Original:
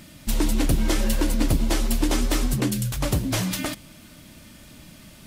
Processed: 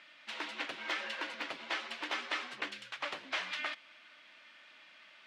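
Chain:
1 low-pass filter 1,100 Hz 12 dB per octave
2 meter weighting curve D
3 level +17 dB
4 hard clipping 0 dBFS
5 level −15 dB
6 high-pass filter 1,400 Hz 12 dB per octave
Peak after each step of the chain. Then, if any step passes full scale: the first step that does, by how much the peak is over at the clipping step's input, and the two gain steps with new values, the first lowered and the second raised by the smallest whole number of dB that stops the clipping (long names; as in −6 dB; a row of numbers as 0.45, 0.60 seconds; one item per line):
−10.5, −13.0, +4.0, 0.0, −15.0, −21.0 dBFS
step 3, 4.0 dB
step 3 +13 dB, step 5 −11 dB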